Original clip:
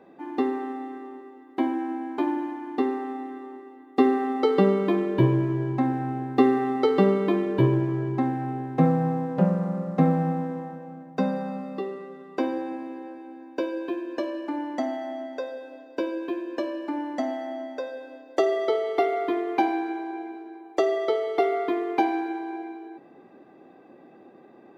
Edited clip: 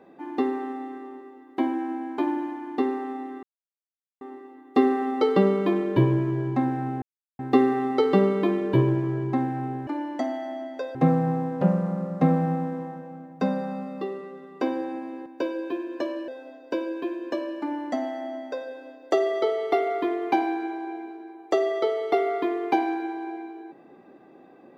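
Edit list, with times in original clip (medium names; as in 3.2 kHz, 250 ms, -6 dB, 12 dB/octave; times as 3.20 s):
3.43 s: insert silence 0.78 s
6.24 s: insert silence 0.37 s
13.03–13.44 s: delete
14.46–15.54 s: move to 8.72 s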